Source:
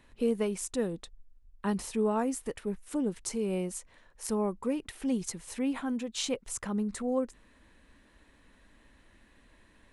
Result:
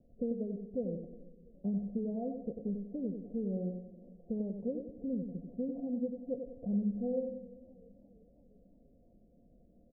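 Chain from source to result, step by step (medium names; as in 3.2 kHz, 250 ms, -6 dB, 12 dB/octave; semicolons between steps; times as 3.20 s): compression, threshold -33 dBFS, peak gain reduction 9.5 dB; rippled Chebyshev low-pass 730 Hz, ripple 9 dB; feedback delay 94 ms, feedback 41%, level -6.5 dB; on a send at -16 dB: reverberation RT60 1.7 s, pre-delay 4 ms; on the sum: modulated delay 342 ms, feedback 56%, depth 94 cents, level -23.5 dB; trim +3.5 dB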